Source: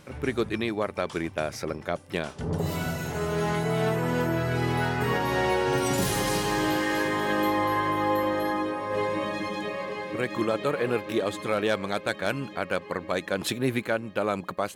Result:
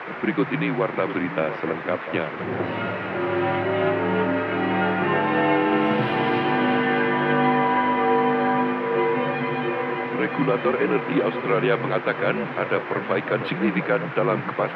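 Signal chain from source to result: frequency shift -61 Hz; elliptic band-pass 140–2800 Hz, stop band 40 dB; band noise 300–2100 Hz -40 dBFS; on a send: echo whose repeats swap between lows and highs 696 ms, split 1.2 kHz, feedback 59%, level -10.5 dB; on the sum: trim +5.5 dB

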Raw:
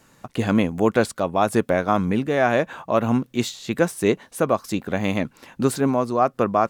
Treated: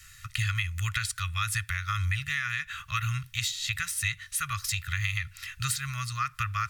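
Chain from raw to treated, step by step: inverse Chebyshev band-stop 210–780 Hz, stop band 50 dB; compression, threshold -35 dBFS, peak gain reduction 10 dB; reverberation, pre-delay 3 ms, DRR 18.5 dB; trim +7 dB

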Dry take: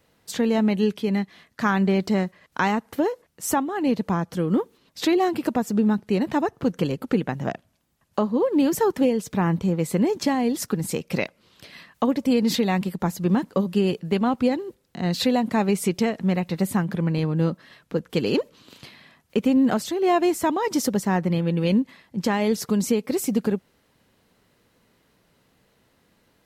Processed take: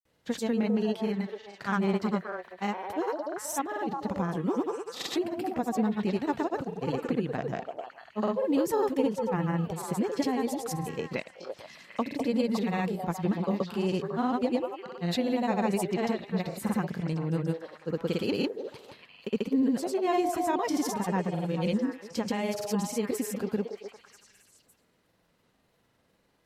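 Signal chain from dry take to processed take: repeats whose band climbs or falls 229 ms, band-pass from 570 Hz, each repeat 0.7 oct, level -2 dB; granulator, pitch spread up and down by 0 st; trim -6 dB

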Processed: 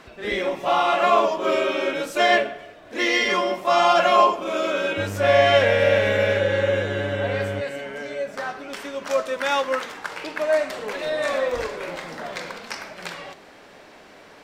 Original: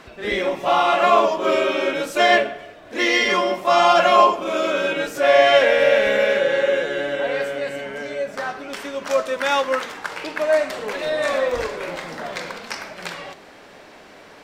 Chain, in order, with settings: 4.97–7.60 s: mains buzz 100 Hz, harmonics 36, -28 dBFS -7 dB/octave; trim -2.5 dB

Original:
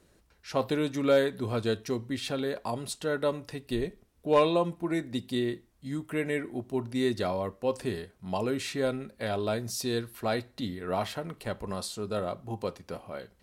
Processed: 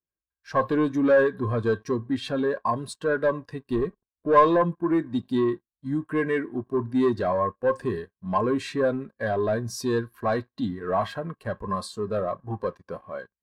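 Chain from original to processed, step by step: waveshaping leveller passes 3; small resonant body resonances 1.1/1.6 kHz, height 12 dB, ringing for 25 ms; spectral contrast expander 1.5:1

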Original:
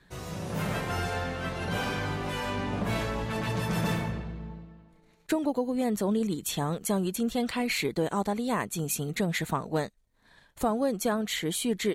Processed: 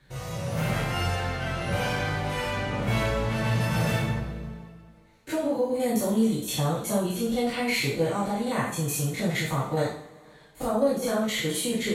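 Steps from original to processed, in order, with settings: spectrogram pixelated in time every 50 ms; 5.72–6.35 s: treble shelf 5.7 kHz +8 dB; two-slope reverb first 0.48 s, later 2.4 s, from -22 dB, DRR -7 dB; trim -3 dB

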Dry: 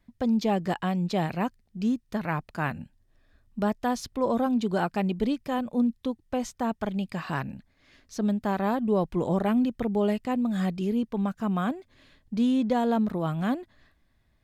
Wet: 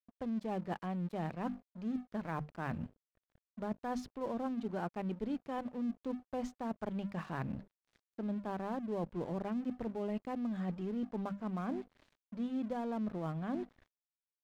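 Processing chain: low-pass 1.3 kHz 6 dB/octave; hum notches 50/100/150/200/250 Hz; reverse; compression 5:1, threshold -39 dBFS, peak gain reduction 16.5 dB; reverse; crossover distortion -56.5 dBFS; trim +3.5 dB

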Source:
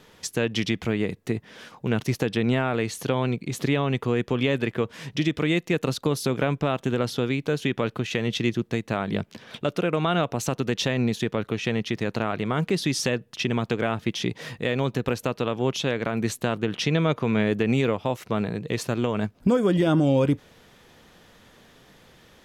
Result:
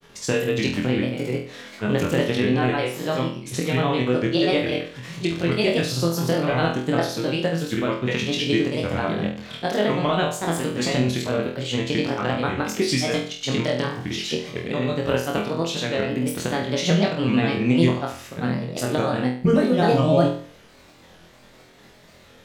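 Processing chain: sawtooth pitch modulation +3 st, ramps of 585 ms; granulator, pitch spread up and down by 3 st; flutter echo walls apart 4.1 m, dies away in 0.46 s; trim +2.5 dB

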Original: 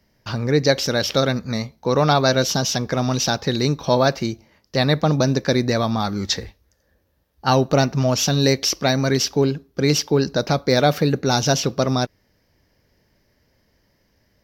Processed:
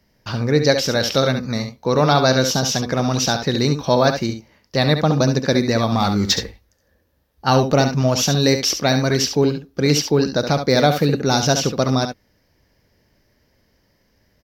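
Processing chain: 5.92–6.39 s: waveshaping leveller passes 1; multi-tap echo 69/73 ms -8.5/-19 dB; trim +1 dB

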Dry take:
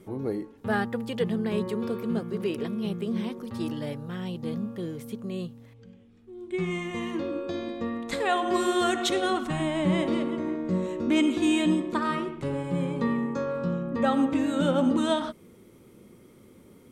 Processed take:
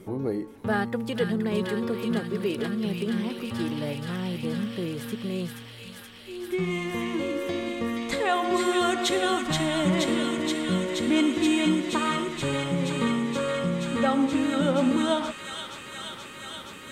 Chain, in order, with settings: in parallel at +1 dB: compression, threshold -35 dBFS, peak gain reduction 15 dB; on the sum: feedback echo behind a high-pass 476 ms, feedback 85%, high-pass 1.9 kHz, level -3 dB; trim -1.5 dB

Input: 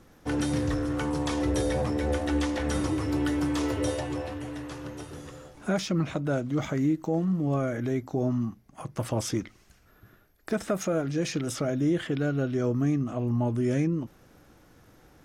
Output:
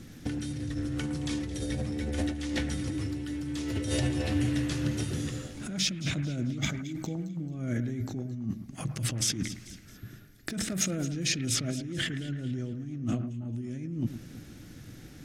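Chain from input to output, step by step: graphic EQ 125/250/500/1000/2000/4000/8000 Hz +7/+6/-5/-11/+3/+4/+4 dB; compressor with a negative ratio -31 dBFS, ratio -1; on a send: echo whose repeats swap between lows and highs 110 ms, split 2.1 kHz, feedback 63%, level -10.5 dB; on the sum: trim -1.5 dB

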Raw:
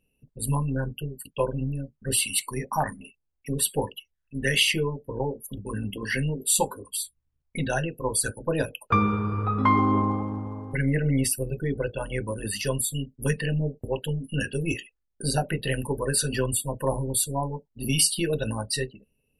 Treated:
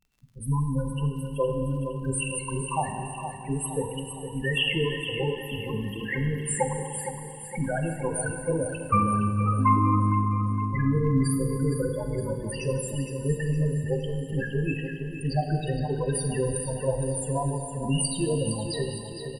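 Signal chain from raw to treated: loudest bins only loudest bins 8; crackle 69 per s -50 dBFS; on a send: feedback delay 463 ms, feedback 51%, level -9 dB; on the sum: Schroeder reverb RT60 2.5 s, combs from 33 ms, DRR 5 dB

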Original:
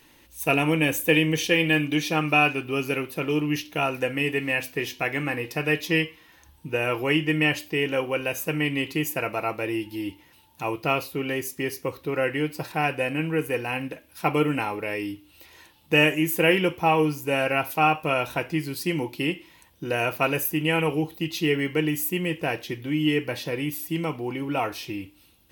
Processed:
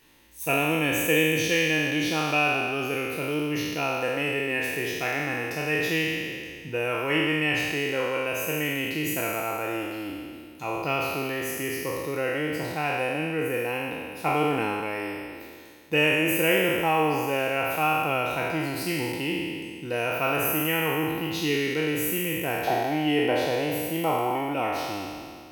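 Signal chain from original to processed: spectral sustain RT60 2.10 s; 22.67–24.54 s: peaking EQ 750 Hz +14.5 dB 0.83 oct; trim -5.5 dB

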